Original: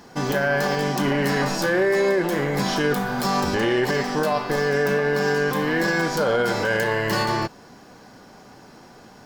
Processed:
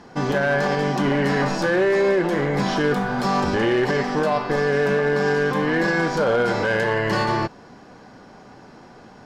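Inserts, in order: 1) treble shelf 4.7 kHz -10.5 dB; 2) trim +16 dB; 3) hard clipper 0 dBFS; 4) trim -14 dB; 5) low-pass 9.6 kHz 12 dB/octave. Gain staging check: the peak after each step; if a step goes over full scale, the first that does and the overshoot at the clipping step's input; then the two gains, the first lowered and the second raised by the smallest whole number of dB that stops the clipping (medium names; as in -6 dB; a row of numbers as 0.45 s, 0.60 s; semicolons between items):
-12.5 dBFS, +3.5 dBFS, 0.0 dBFS, -14.0 dBFS, -13.5 dBFS; step 2, 3.5 dB; step 2 +12 dB, step 4 -10 dB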